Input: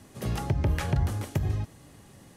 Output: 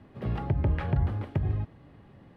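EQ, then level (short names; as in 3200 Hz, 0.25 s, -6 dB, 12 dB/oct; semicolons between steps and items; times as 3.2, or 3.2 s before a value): air absorption 430 m; 0.0 dB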